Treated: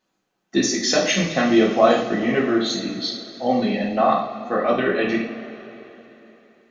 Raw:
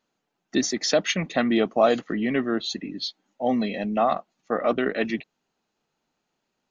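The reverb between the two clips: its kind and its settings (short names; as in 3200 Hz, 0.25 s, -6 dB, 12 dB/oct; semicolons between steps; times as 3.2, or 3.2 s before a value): two-slope reverb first 0.52 s, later 3.6 s, from -17 dB, DRR -3.5 dB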